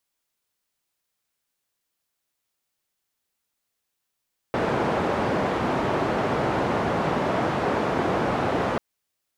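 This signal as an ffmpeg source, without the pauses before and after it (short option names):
-f lavfi -i "anoisesrc=c=white:d=4.24:r=44100:seed=1,highpass=f=100,lowpass=f=810,volume=-4.8dB"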